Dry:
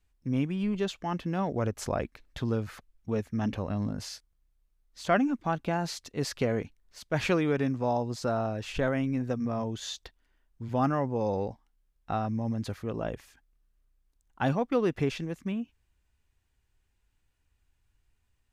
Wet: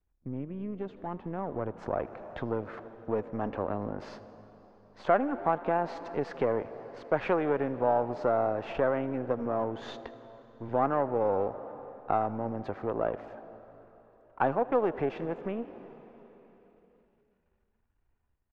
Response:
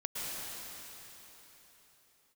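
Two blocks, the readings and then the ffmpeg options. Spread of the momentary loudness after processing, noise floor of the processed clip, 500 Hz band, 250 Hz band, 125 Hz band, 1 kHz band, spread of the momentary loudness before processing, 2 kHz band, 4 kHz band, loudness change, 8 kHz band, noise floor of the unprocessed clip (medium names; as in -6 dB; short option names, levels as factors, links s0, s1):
16 LU, -74 dBFS, +2.5 dB, -5.0 dB, -8.0 dB, +3.0 dB, 11 LU, -2.5 dB, -12.0 dB, -0.5 dB, under -20 dB, -74 dBFS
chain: -filter_complex "[0:a]aeval=exprs='if(lt(val(0),0),0.447*val(0),val(0))':c=same,lowpass=1400,asplit=5[s0][s1][s2][s3][s4];[s1]adelay=80,afreqshift=53,volume=0.0794[s5];[s2]adelay=160,afreqshift=106,volume=0.0462[s6];[s3]adelay=240,afreqshift=159,volume=0.0266[s7];[s4]adelay=320,afreqshift=212,volume=0.0155[s8];[s0][s5][s6][s7][s8]amix=inputs=5:normalize=0,asplit=2[s9][s10];[1:a]atrim=start_sample=2205[s11];[s10][s11]afir=irnorm=-1:irlink=0,volume=0.0841[s12];[s9][s12]amix=inputs=2:normalize=0,acompressor=threshold=0.0158:ratio=2,equalizer=f=420:w=0.45:g=4,acrossover=split=430[s13][s14];[s14]dynaudnorm=f=340:g=11:m=4.73[s15];[s13][s15]amix=inputs=2:normalize=0,volume=0.668"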